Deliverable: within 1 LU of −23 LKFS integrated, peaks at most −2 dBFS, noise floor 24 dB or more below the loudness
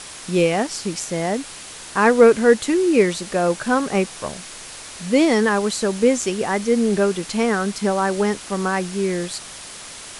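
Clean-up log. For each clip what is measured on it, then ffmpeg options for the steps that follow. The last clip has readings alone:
background noise floor −37 dBFS; target noise floor −44 dBFS; integrated loudness −19.5 LKFS; sample peak −1.5 dBFS; target loudness −23.0 LKFS
→ -af "afftdn=noise_reduction=7:noise_floor=-37"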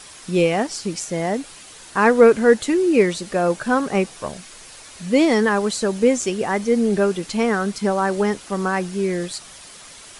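background noise floor −42 dBFS; target noise floor −44 dBFS
→ -af "afftdn=noise_reduction=6:noise_floor=-42"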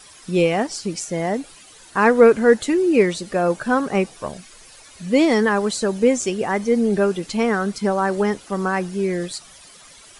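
background noise floor −46 dBFS; integrated loudness −19.5 LKFS; sample peak −1.5 dBFS; target loudness −23.0 LKFS
→ -af "volume=-3.5dB"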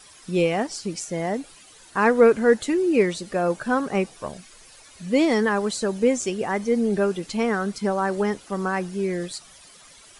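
integrated loudness −23.0 LKFS; sample peak −5.0 dBFS; background noise floor −49 dBFS

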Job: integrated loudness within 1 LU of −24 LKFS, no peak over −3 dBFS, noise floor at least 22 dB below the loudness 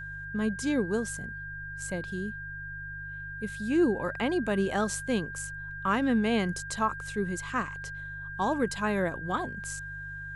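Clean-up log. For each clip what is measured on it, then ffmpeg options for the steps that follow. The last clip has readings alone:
mains hum 50 Hz; hum harmonics up to 150 Hz; level of the hum −43 dBFS; interfering tone 1,600 Hz; level of the tone −38 dBFS; integrated loudness −31.0 LKFS; sample peak −15.0 dBFS; target loudness −24.0 LKFS
→ -af "bandreject=frequency=50:width_type=h:width=4,bandreject=frequency=100:width_type=h:width=4,bandreject=frequency=150:width_type=h:width=4"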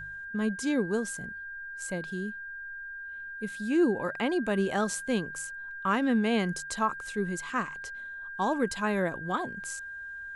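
mains hum none found; interfering tone 1,600 Hz; level of the tone −38 dBFS
→ -af "bandreject=frequency=1600:width=30"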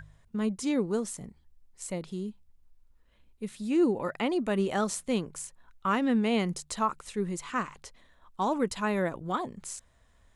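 interfering tone none found; integrated loudness −30.5 LKFS; sample peak −15.0 dBFS; target loudness −24.0 LKFS
→ -af "volume=6.5dB"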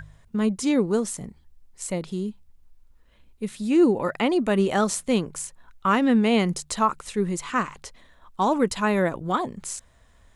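integrated loudness −24.0 LKFS; sample peak −8.5 dBFS; background noise floor −57 dBFS

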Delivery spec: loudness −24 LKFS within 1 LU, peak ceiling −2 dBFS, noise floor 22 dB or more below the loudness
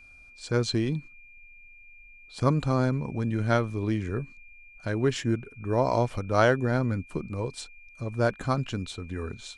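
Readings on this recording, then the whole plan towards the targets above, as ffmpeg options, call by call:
interfering tone 2,400 Hz; level of the tone −50 dBFS; integrated loudness −28.0 LKFS; sample peak −8.0 dBFS; target loudness −24.0 LKFS
→ -af "bandreject=frequency=2400:width=30"
-af "volume=4dB"

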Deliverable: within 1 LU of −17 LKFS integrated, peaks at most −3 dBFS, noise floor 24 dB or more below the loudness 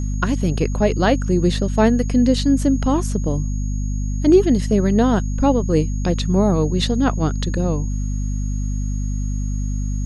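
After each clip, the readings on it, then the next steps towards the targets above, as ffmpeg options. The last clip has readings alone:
mains hum 50 Hz; hum harmonics up to 250 Hz; level of the hum −19 dBFS; interfering tone 6,600 Hz; level of the tone −40 dBFS; integrated loudness −19.5 LKFS; sample peak −3.0 dBFS; target loudness −17.0 LKFS
→ -af "bandreject=frequency=50:width_type=h:width=4,bandreject=frequency=100:width_type=h:width=4,bandreject=frequency=150:width_type=h:width=4,bandreject=frequency=200:width_type=h:width=4,bandreject=frequency=250:width_type=h:width=4"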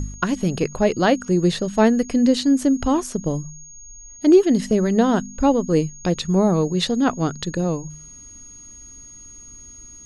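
mains hum none found; interfering tone 6,600 Hz; level of the tone −40 dBFS
→ -af "bandreject=frequency=6600:width=30"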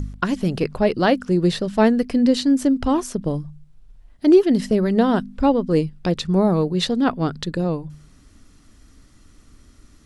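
interfering tone none found; integrated loudness −20.0 LKFS; sample peak −4.5 dBFS; target loudness −17.0 LKFS
→ -af "volume=3dB,alimiter=limit=-3dB:level=0:latency=1"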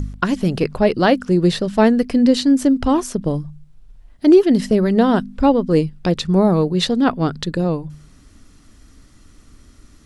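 integrated loudness −17.0 LKFS; sample peak −3.0 dBFS; background noise floor −48 dBFS

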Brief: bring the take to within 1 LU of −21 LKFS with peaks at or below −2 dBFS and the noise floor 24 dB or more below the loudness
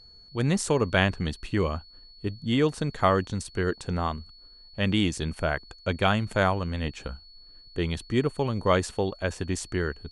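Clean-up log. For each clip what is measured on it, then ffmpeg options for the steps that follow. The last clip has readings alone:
interfering tone 4,400 Hz; level of the tone −50 dBFS; integrated loudness −27.5 LKFS; sample peak −7.0 dBFS; target loudness −21.0 LKFS
→ -af "bandreject=frequency=4400:width=30"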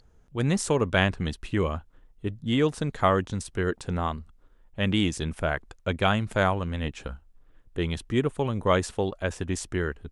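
interfering tone none found; integrated loudness −27.5 LKFS; sample peak −7.0 dBFS; target loudness −21.0 LKFS
→ -af "volume=6.5dB,alimiter=limit=-2dB:level=0:latency=1"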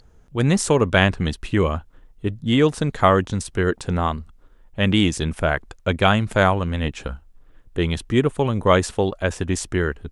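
integrated loudness −21.0 LKFS; sample peak −2.0 dBFS; background noise floor −52 dBFS

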